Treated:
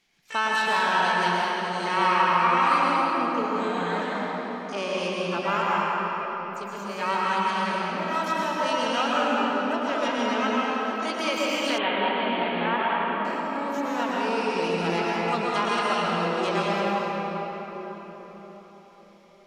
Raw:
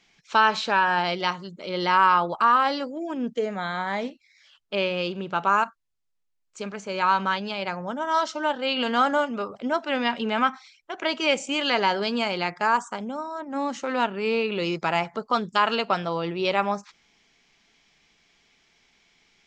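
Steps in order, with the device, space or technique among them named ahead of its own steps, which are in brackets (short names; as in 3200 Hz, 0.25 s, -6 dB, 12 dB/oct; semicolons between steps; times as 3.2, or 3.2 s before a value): shimmer-style reverb (harmoniser +12 st -10 dB; reverb RT60 4.9 s, pre-delay 0.105 s, DRR -6 dB); 11.78–13.25 elliptic low-pass 3600 Hz, stop band 40 dB; gain -7.5 dB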